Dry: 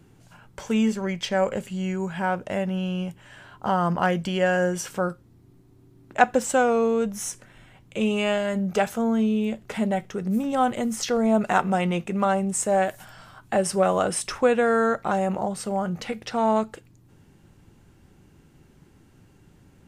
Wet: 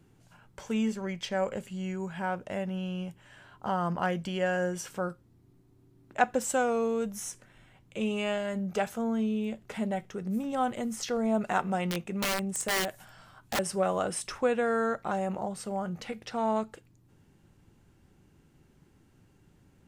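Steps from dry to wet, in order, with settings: 6.40–7.20 s: treble shelf 7.1 kHz +7 dB; 11.86–13.59 s: integer overflow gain 16.5 dB; trim -7 dB

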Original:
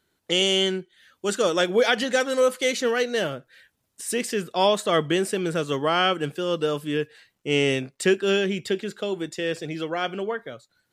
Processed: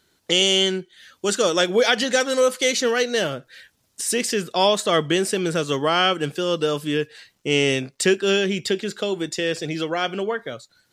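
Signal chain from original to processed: peaking EQ 5.4 kHz +6 dB 1.3 oct; in parallel at +0.5 dB: compression, threshold -32 dBFS, peak gain reduction 16.5 dB

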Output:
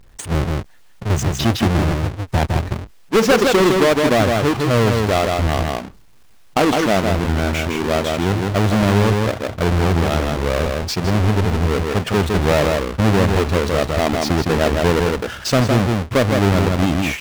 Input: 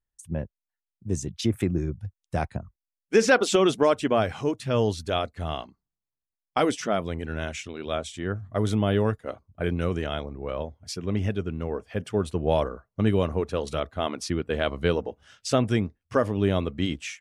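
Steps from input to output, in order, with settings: square wave that keeps the level; treble shelf 6.2 kHz -11 dB; on a send: delay 160 ms -6 dB; on the sum: level flattener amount 50%

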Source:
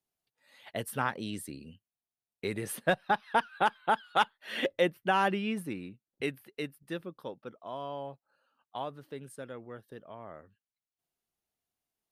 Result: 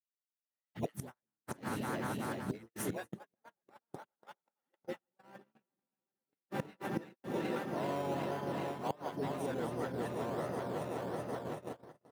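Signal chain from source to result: backward echo that repeats 189 ms, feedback 85%, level -8 dB; bass shelf 440 Hz +9 dB; phase dispersion highs, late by 103 ms, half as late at 330 Hz; inverted gate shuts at -22 dBFS, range -31 dB; harmony voices -7 st -7 dB, +4 st -17 dB, +7 st -12 dB; in parallel at -9 dB: decimation with a swept rate 11×, swing 60% 1.4 Hz; on the sum: peaking EQ 1.8 kHz +4 dB 0.28 oct; gate -46 dBFS, range -48 dB; reverse; compression 5:1, threshold -45 dBFS, peak gain reduction 19 dB; reverse; high-pass 150 Hz 12 dB/octave; trim +10 dB

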